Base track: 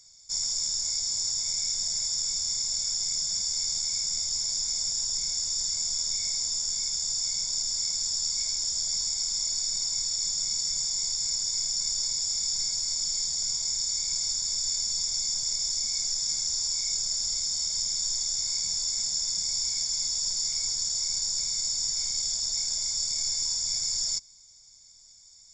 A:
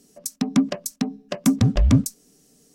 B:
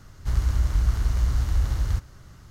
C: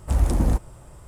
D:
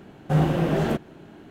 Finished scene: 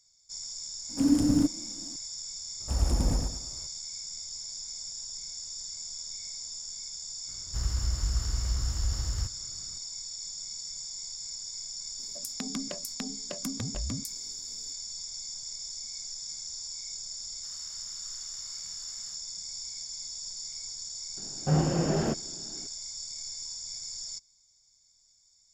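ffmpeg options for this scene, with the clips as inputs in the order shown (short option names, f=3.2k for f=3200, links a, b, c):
-filter_complex "[3:a]asplit=2[a][b];[2:a]asplit=2[c][d];[0:a]volume=-10.5dB[e];[a]afreqshift=-340[f];[b]aecho=1:1:108|216|324|432:0.708|0.227|0.0725|0.0232[g];[1:a]acompressor=threshold=-28dB:ratio=6:attack=3.2:release=140:knee=1:detection=peak[h];[d]highpass=1.2k[i];[4:a]highshelf=f=2.8k:g=-10[j];[f]atrim=end=1.07,asetpts=PTS-STARTPTS,volume=-4.5dB,afade=t=in:d=0.004:c=hsin,afade=t=out:st=1.066:d=0.004:c=hsin,adelay=890[k];[g]atrim=end=1.07,asetpts=PTS-STARTPTS,volume=-8.5dB,afade=t=in:d=0.004:c=hsin,afade=t=out:st=1.066:d=0.004:c=hsin,adelay=2600[l];[c]atrim=end=2.5,asetpts=PTS-STARTPTS,volume=-7.5dB,afade=t=in:d=0.004:c=hsin,afade=t=out:st=2.496:d=0.004:c=hsin,adelay=7280[m];[h]atrim=end=2.74,asetpts=PTS-STARTPTS,volume=-4.5dB,afade=t=in:d=0.004:c=hsin,afade=t=out:st=2.736:d=0.004:c=hsin,adelay=11990[n];[i]atrim=end=2.5,asetpts=PTS-STARTPTS,volume=-17dB,afade=t=in:d=0.004:c=hsin,afade=t=out:st=2.496:d=0.004:c=hsin,adelay=17170[o];[j]atrim=end=1.5,asetpts=PTS-STARTPTS,volume=-4.5dB,afade=t=in:d=0.004:c=hsin,afade=t=out:st=1.496:d=0.004:c=hsin,adelay=21170[p];[e][k][l][m][n][o][p]amix=inputs=7:normalize=0"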